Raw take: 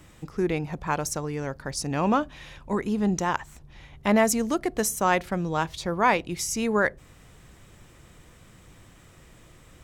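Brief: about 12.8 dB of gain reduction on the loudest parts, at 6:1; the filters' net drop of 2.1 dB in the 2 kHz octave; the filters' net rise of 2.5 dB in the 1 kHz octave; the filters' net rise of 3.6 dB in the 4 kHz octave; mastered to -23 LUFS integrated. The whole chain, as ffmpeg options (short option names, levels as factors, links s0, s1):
-af "equalizer=f=1000:t=o:g=4,equalizer=f=2000:t=o:g=-5.5,equalizer=f=4000:t=o:g=6.5,acompressor=threshold=0.0398:ratio=6,volume=3.16"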